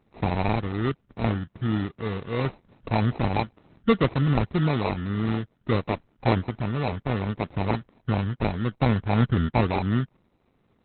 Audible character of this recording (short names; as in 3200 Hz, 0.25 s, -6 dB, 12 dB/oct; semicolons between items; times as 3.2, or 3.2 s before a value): aliases and images of a low sample rate 1600 Hz, jitter 0%; Opus